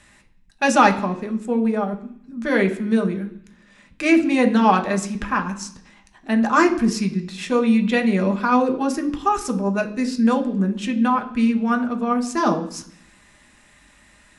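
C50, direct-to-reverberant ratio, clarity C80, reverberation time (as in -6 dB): 13.0 dB, 4.0 dB, 16.5 dB, 0.65 s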